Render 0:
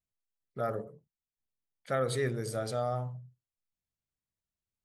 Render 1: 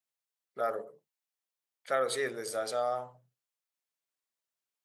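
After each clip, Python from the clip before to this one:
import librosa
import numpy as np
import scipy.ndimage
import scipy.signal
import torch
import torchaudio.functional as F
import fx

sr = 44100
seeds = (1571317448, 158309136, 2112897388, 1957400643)

y = scipy.signal.sosfilt(scipy.signal.butter(2, 480.0, 'highpass', fs=sr, output='sos'), x)
y = y * librosa.db_to_amplitude(3.0)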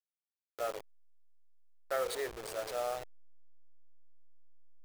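y = fx.delta_hold(x, sr, step_db=-31.5)
y = fx.low_shelf_res(y, sr, hz=320.0, db=-8.0, q=1.5)
y = y * librosa.db_to_amplitude(-5.0)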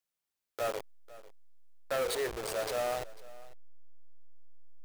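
y = 10.0 ** (-34.0 / 20.0) * np.tanh(x / 10.0 ** (-34.0 / 20.0))
y = y + 10.0 ** (-19.5 / 20.0) * np.pad(y, (int(497 * sr / 1000.0), 0))[:len(y)]
y = y * librosa.db_to_amplitude(7.0)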